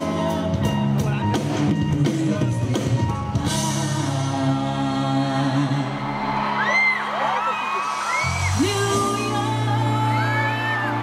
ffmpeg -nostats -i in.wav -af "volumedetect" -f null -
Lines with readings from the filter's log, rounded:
mean_volume: -21.3 dB
max_volume: -9.7 dB